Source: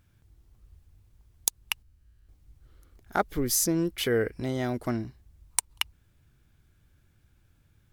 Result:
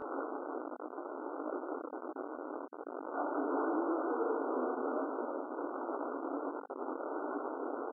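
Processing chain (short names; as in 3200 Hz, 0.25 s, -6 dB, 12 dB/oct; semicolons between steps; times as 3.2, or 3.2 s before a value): delta modulation 32 kbps, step -31 dBFS; comb 6.7 ms, depth 33%; compressor 12:1, threshold -32 dBFS, peak gain reduction 13.5 dB; Schroeder reverb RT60 3.7 s, combs from 29 ms, DRR -4.5 dB; upward compressor, threshold -33 dBFS; transient shaper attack +5 dB, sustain -7 dB; Schmitt trigger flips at -33.5 dBFS; brick-wall FIR band-pass 260–1500 Hz; detuned doubles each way 47 cents; gain +4 dB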